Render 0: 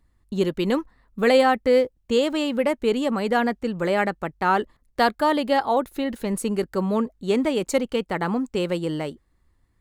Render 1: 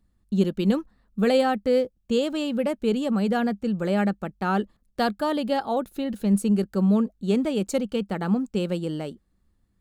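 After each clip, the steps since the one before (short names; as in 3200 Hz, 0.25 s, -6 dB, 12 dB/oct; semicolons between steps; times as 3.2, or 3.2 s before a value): thirty-one-band EQ 200 Hz +11 dB, 1000 Hz -7 dB, 2000 Hz -8 dB; gain -3.5 dB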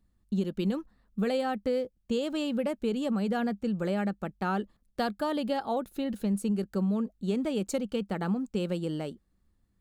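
compressor, threshold -22 dBFS, peak gain reduction 7.5 dB; gain -3 dB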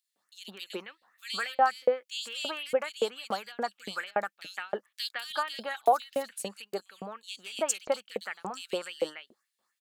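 LFO high-pass saw up 3.5 Hz 530–7300 Hz; bands offset in time highs, lows 0.16 s, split 2700 Hz; gain +5 dB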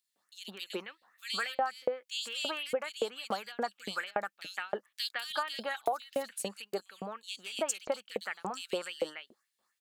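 compressor 5:1, threshold -28 dBFS, peak gain reduction 10.5 dB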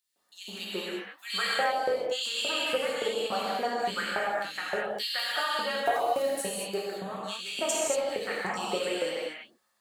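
non-linear reverb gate 0.26 s flat, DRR -5.5 dB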